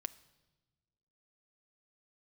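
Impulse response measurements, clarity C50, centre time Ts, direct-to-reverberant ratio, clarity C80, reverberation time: 18.5 dB, 3 ms, 12.0 dB, 20.5 dB, 1.2 s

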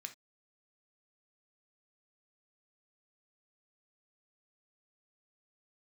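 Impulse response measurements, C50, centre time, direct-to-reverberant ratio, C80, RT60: 13.5 dB, 7 ms, 6.0 dB, 24.5 dB, no single decay rate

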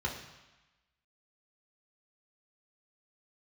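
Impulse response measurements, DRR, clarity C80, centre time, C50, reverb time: -1.5 dB, 9.0 dB, 32 ms, 6.5 dB, 1.1 s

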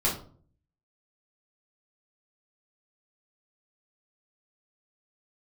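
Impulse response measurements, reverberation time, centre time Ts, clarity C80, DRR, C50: 0.50 s, 28 ms, 12.5 dB, -5.5 dB, 7.5 dB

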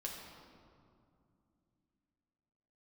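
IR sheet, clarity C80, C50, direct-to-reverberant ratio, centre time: 3.5 dB, 2.0 dB, -2.0 dB, 82 ms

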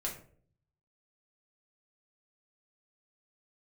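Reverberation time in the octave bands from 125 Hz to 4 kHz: 1.1 s, 0.70 s, 0.60 s, 0.40 s, 0.40 s, 0.30 s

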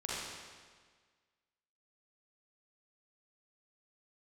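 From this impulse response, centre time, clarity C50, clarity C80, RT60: 124 ms, -4.5 dB, -1.0 dB, 1.6 s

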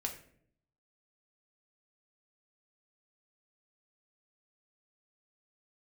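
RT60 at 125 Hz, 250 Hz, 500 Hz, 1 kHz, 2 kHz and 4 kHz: 0.95 s, 0.90 s, 0.75 s, 0.50 s, 0.50 s, 0.40 s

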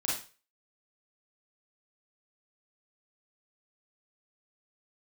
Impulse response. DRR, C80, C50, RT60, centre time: -6.0 dB, 9.0 dB, 1.5 dB, 0.35 s, 45 ms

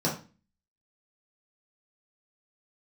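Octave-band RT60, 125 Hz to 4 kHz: 0.45 s, 0.50 s, 0.35 s, 0.35 s, 0.35 s, 0.30 s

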